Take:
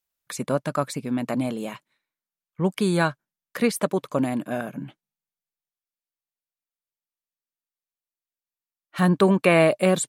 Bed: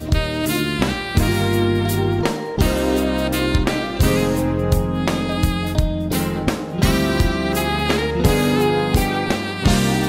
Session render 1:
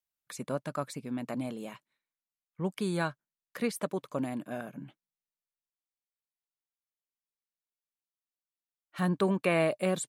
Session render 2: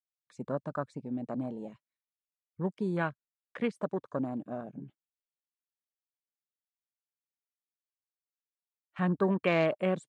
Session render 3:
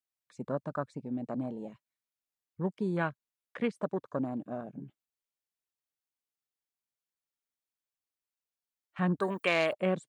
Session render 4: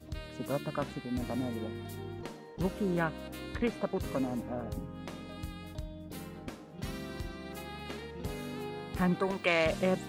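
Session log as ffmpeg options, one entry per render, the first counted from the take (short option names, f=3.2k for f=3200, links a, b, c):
-af "volume=-9.5dB"
-af "afwtdn=0.01,lowpass=f=8k:w=0.5412,lowpass=f=8k:w=1.3066"
-filter_complex "[0:a]asettb=1/sr,asplit=3[a][b][c];[a]atrim=end=9.204[d];[b]atrim=start=9.2:end=9.73,asetpts=PTS-STARTPTS,afade=t=in:d=0.004:c=qsin,afade=t=out:st=0.526:d=0.004:c=qsin,aemphasis=mode=production:type=riaa[e];[c]atrim=start=9.726[f];[d][e]acrossfade=d=0.004:c1=hsin:c2=qsin[g];[g][f]acrossfade=d=0.004:c1=qsin:c2=hsin"
-filter_complex "[1:a]volume=-23dB[a];[0:a][a]amix=inputs=2:normalize=0"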